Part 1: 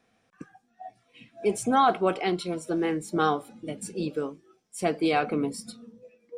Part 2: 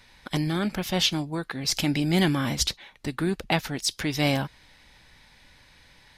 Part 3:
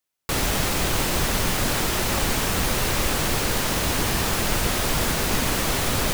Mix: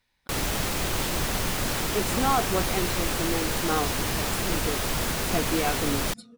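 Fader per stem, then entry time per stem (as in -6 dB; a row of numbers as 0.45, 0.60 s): -3.5, -19.0, -4.5 dB; 0.50, 0.00, 0.00 s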